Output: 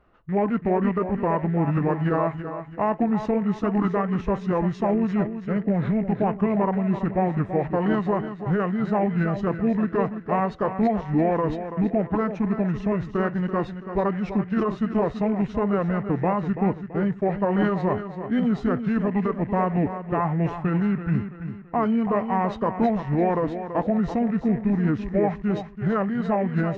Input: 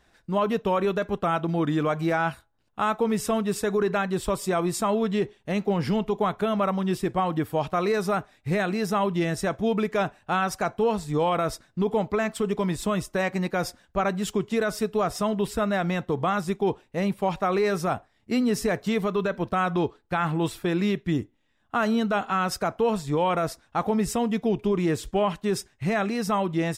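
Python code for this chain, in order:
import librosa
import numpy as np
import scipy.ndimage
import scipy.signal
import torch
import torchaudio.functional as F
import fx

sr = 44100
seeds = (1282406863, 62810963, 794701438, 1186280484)

p1 = fx.rattle_buzz(x, sr, strikes_db=-39.0, level_db=-33.0)
p2 = scipy.signal.sosfilt(scipy.signal.butter(2, 2200.0, 'lowpass', fs=sr, output='sos'), p1)
p3 = p2 + fx.echo_feedback(p2, sr, ms=333, feedback_pct=40, wet_db=-10.0, dry=0)
p4 = fx.formant_shift(p3, sr, semitones=-5)
y = p4 * 10.0 ** (2.0 / 20.0)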